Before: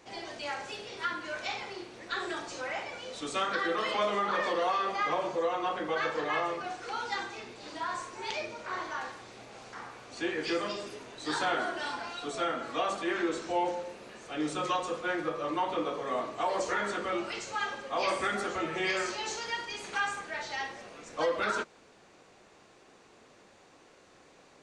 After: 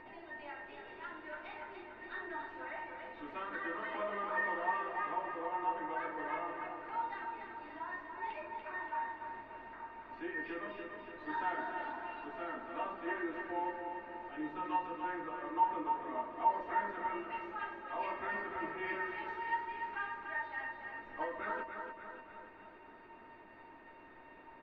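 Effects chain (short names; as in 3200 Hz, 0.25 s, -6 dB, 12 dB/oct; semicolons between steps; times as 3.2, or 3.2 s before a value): LPF 2300 Hz 24 dB/oct; notch 560 Hz, Q 12; comb 3.2 ms, depth 43%; upward compressor, threshold -38 dBFS; resonator 910 Hz, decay 0.26 s, mix 90%; feedback echo 0.289 s, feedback 56%, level -6 dB; gain +7.5 dB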